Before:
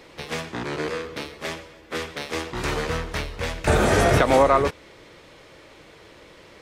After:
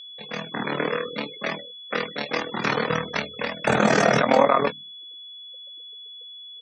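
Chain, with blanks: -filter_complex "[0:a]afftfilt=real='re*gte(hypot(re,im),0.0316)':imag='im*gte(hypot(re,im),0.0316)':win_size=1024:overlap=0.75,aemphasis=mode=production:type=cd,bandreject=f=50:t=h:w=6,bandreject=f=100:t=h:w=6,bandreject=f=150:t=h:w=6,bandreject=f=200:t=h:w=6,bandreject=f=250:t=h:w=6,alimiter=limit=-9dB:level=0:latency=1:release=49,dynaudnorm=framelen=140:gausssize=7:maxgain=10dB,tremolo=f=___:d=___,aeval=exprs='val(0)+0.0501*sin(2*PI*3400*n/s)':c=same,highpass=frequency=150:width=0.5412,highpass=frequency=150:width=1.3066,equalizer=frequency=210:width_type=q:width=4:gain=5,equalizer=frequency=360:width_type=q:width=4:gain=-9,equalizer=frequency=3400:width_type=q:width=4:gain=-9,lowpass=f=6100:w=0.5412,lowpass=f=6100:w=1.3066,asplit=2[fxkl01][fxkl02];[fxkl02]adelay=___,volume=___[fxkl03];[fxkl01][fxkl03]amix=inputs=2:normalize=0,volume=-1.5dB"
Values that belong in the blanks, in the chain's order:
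39, 0.947, 14, -12dB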